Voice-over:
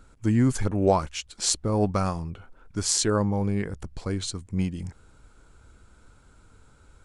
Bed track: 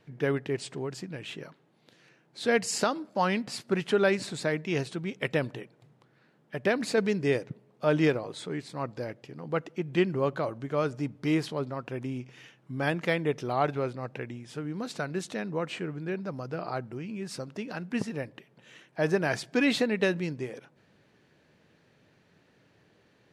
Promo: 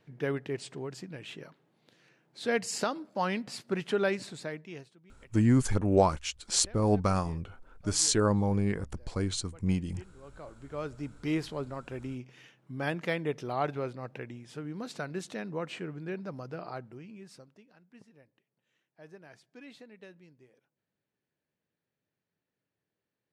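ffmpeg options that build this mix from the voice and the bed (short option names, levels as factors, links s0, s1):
-filter_complex "[0:a]adelay=5100,volume=0.794[s0];[1:a]volume=7.94,afade=t=out:st=4.04:d=0.91:silence=0.0794328,afade=t=in:st=10.22:d=1.11:silence=0.0794328,afade=t=out:st=16.37:d=1.29:silence=0.0891251[s1];[s0][s1]amix=inputs=2:normalize=0"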